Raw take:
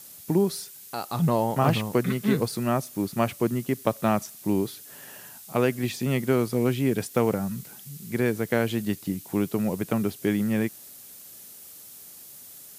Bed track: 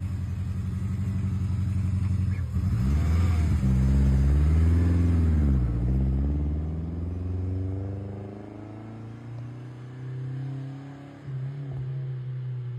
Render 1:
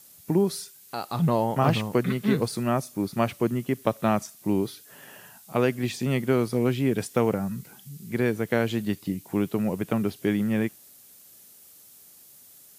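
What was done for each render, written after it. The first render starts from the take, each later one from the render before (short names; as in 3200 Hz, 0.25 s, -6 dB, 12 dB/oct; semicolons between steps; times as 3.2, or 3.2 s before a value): noise print and reduce 6 dB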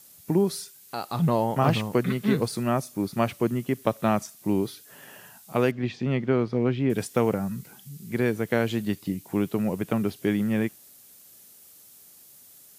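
5.71–6.9 air absorption 210 m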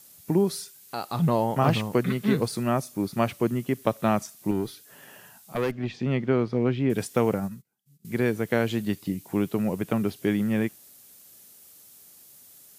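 4.51–5.95 tube stage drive 18 dB, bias 0.45; 7.4–8.05 upward expander 2.5:1, over -50 dBFS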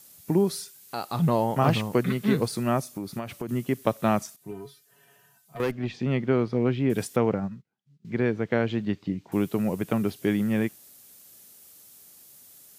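2.92–3.49 compressor 10:1, threshold -28 dBFS; 4.36–5.6 resonator 140 Hz, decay 0.17 s, harmonics odd, mix 90%; 7.16–9.32 air absorption 180 m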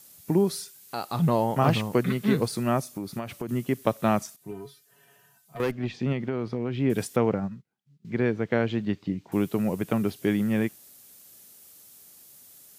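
6.12–6.8 compressor, threshold -24 dBFS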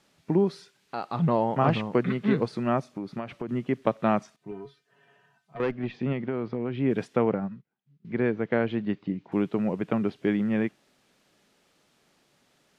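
LPF 2800 Hz 12 dB/oct; bell 88 Hz -10 dB 0.69 oct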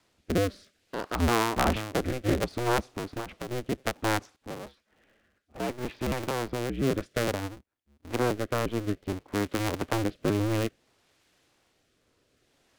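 cycle switcher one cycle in 2, inverted; rotary speaker horn 0.6 Hz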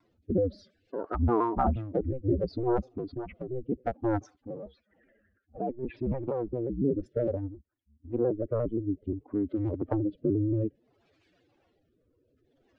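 spectral contrast raised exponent 2.8; shaped vibrato saw down 5.7 Hz, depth 100 cents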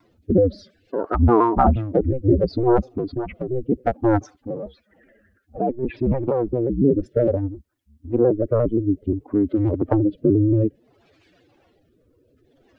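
gain +10 dB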